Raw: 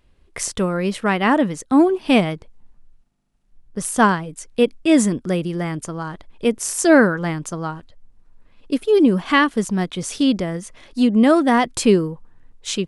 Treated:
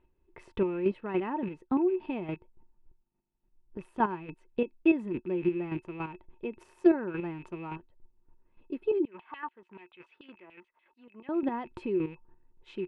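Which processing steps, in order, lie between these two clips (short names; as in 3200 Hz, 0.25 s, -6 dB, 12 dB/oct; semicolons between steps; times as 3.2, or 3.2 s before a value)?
rattling part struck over -33 dBFS, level -23 dBFS; compressor 2.5:1, threshold -18 dBFS, peak gain reduction 7.5 dB; chopper 3.5 Hz, depth 60%, duty 20%; small resonant body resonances 360/910/2600 Hz, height 16 dB, ringing for 80 ms; 9.05–11.29 LFO band-pass saw down 6.9 Hz 900–3500 Hz; air absorption 480 m; gain -8.5 dB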